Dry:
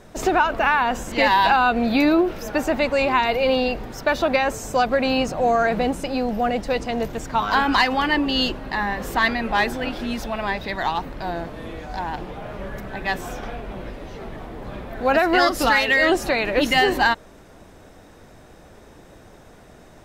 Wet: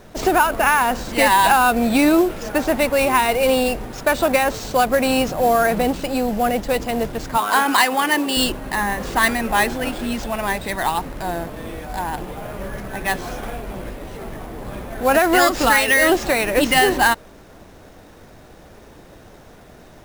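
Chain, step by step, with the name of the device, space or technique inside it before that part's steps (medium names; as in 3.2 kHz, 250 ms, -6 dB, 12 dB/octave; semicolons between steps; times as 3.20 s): early companding sampler (sample-rate reducer 12 kHz, jitter 0%; companded quantiser 6-bit); 7.37–8.37 s: high-pass 280 Hz 12 dB/octave; trim +2.5 dB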